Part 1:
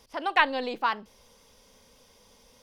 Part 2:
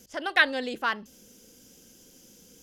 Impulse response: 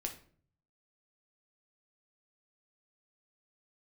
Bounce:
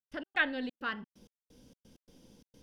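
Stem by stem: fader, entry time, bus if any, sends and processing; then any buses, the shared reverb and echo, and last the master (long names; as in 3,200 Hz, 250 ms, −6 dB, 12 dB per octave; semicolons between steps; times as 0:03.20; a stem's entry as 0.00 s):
−7.5 dB, 0.00 s, no send, flat-topped bell 1,700 Hz −9 dB; downward compressor 3 to 1, threshold −33 dBFS, peak gain reduction 9 dB
−1.0 dB, 0.00 s, send −17.5 dB, Butterworth low-pass 3,600 Hz 96 dB per octave; low-shelf EQ 320 Hz +11.5 dB; automatic ducking −10 dB, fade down 0.25 s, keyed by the first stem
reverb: on, RT60 0.50 s, pre-delay 7 ms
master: gate pattern ".x.xxx.xx.x..xx" 130 BPM −60 dB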